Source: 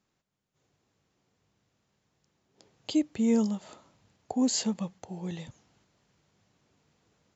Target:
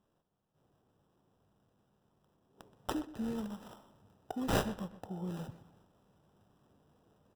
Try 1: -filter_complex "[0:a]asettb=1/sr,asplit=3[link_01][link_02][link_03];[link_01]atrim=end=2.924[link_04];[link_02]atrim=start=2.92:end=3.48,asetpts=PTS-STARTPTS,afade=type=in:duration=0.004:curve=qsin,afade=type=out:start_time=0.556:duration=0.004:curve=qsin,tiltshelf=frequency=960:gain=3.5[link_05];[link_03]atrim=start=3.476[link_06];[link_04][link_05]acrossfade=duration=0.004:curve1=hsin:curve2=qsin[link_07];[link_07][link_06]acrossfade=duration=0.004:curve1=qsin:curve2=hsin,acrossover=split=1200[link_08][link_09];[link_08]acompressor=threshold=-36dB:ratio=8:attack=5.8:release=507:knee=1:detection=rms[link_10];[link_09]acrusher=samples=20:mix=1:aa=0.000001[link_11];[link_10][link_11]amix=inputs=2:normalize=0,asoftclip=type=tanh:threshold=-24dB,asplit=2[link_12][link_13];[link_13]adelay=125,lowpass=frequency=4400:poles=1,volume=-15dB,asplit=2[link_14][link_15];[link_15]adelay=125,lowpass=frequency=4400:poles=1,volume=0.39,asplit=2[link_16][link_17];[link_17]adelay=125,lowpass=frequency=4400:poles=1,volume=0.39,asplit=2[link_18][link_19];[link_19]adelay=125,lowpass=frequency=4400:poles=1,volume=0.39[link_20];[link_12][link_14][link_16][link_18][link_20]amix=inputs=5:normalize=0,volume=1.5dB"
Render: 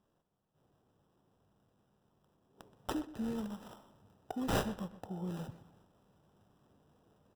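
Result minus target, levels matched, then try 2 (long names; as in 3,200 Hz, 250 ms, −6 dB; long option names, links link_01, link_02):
soft clipping: distortion +18 dB
-filter_complex "[0:a]asettb=1/sr,asplit=3[link_01][link_02][link_03];[link_01]atrim=end=2.924[link_04];[link_02]atrim=start=2.92:end=3.48,asetpts=PTS-STARTPTS,afade=type=in:duration=0.004:curve=qsin,afade=type=out:start_time=0.556:duration=0.004:curve=qsin,tiltshelf=frequency=960:gain=3.5[link_05];[link_03]atrim=start=3.476[link_06];[link_04][link_05]acrossfade=duration=0.004:curve1=hsin:curve2=qsin[link_07];[link_07][link_06]acrossfade=duration=0.004:curve1=qsin:curve2=hsin,acrossover=split=1200[link_08][link_09];[link_08]acompressor=threshold=-36dB:ratio=8:attack=5.8:release=507:knee=1:detection=rms[link_10];[link_09]acrusher=samples=20:mix=1:aa=0.000001[link_11];[link_10][link_11]amix=inputs=2:normalize=0,asoftclip=type=tanh:threshold=-13dB,asplit=2[link_12][link_13];[link_13]adelay=125,lowpass=frequency=4400:poles=1,volume=-15dB,asplit=2[link_14][link_15];[link_15]adelay=125,lowpass=frequency=4400:poles=1,volume=0.39,asplit=2[link_16][link_17];[link_17]adelay=125,lowpass=frequency=4400:poles=1,volume=0.39,asplit=2[link_18][link_19];[link_19]adelay=125,lowpass=frequency=4400:poles=1,volume=0.39[link_20];[link_12][link_14][link_16][link_18][link_20]amix=inputs=5:normalize=0,volume=1.5dB"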